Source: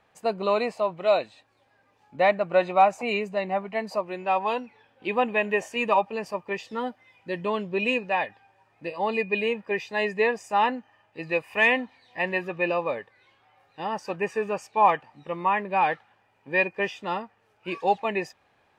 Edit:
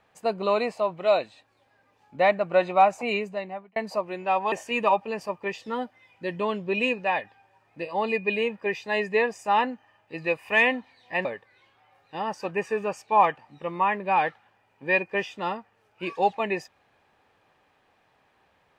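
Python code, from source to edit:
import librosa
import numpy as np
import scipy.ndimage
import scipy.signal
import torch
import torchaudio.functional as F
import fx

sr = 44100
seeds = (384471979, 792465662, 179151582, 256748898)

y = fx.edit(x, sr, fx.fade_out_span(start_s=3.15, length_s=0.61),
    fx.cut(start_s=4.52, length_s=1.05),
    fx.cut(start_s=12.3, length_s=0.6), tone=tone)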